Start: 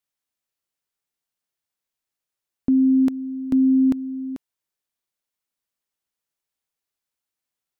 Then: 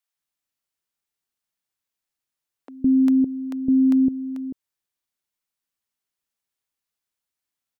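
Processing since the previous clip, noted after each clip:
multiband delay without the direct sound highs, lows 160 ms, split 520 Hz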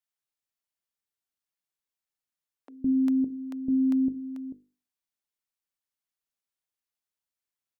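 mains-hum notches 50/100/150/200/250/300/350/400/450/500 Hz
level −6.5 dB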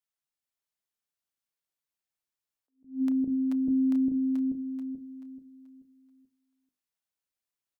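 on a send: repeating echo 433 ms, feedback 37%, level −4 dB
on the sum: level that may rise only so fast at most 190 dB per second
level −2.5 dB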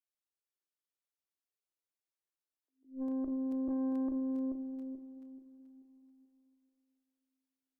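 low shelf with overshoot 230 Hz −12 dB, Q 3
tube saturation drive 26 dB, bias 0.6
dense smooth reverb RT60 3.3 s, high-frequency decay 0.8×, DRR 10.5 dB
level −5.5 dB

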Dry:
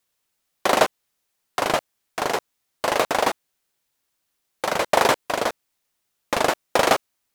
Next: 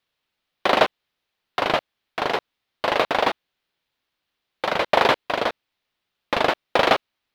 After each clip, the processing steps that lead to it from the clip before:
high shelf with overshoot 5,300 Hz −13 dB, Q 1.5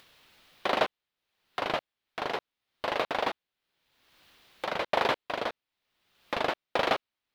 upward compression, threshold −29 dBFS
level −9 dB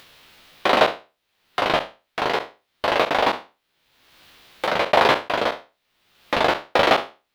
peak hold with a decay on every bin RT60 0.30 s
level +8.5 dB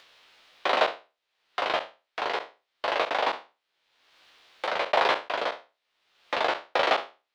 three-way crossover with the lows and the highs turned down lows −14 dB, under 370 Hz, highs −15 dB, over 7,700 Hz
level −6 dB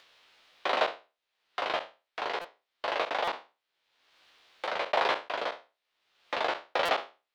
buffer that repeats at 0:02.41/0:03.24/0:06.85, samples 256, times 5
level −4 dB

